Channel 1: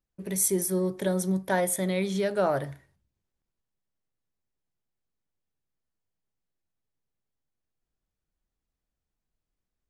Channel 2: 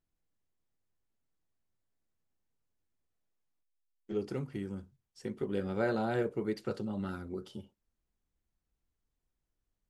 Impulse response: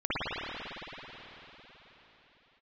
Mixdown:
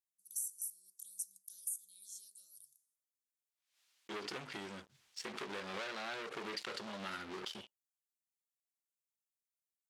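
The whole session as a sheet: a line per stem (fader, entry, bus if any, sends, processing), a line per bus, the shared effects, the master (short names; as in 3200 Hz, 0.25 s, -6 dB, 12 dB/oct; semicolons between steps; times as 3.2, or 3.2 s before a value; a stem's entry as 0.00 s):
-0.5 dB, 0.00 s, no send, inverse Chebyshev high-pass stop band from 2100 Hz, stop band 60 dB
-4.0 dB, 0.00 s, no send, sample leveller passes 5; band-pass 3400 Hz, Q 0.75; backwards sustainer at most 100 dB/s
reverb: off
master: compressor 16:1, threshold -37 dBFS, peak gain reduction 16 dB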